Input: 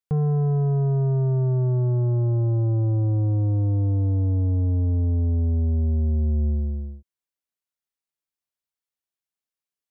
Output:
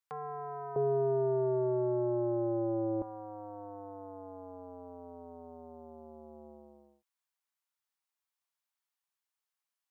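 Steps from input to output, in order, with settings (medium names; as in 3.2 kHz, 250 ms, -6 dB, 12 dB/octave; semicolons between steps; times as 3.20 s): resonant high-pass 1 kHz, resonance Q 1.6, from 0.76 s 440 Hz, from 3.02 s 910 Hz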